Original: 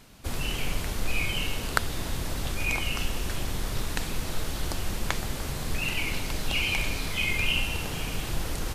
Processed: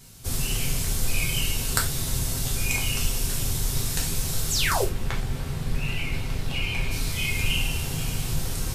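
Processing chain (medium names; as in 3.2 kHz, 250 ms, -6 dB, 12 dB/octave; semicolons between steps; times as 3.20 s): tone controls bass +8 dB, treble +14 dB, from 4.83 s treble -3 dB, from 6.90 s treble +9 dB; 4.50–4.85 s: painted sound fall 320–8500 Hz -23 dBFS; reverberation, pre-delay 3 ms, DRR -2 dB; trim -6.5 dB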